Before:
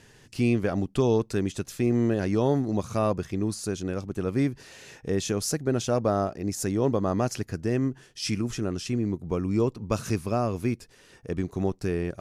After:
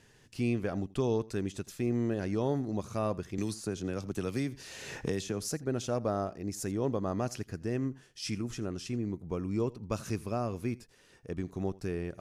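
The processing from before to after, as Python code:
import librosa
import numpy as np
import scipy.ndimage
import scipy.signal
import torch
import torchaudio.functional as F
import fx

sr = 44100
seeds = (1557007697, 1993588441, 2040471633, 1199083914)

y = x + 10.0 ** (-22.0 / 20.0) * np.pad(x, (int(83 * sr / 1000.0), 0))[:len(x)]
y = fx.band_squash(y, sr, depth_pct=100, at=(3.38, 5.45))
y = y * 10.0 ** (-7.0 / 20.0)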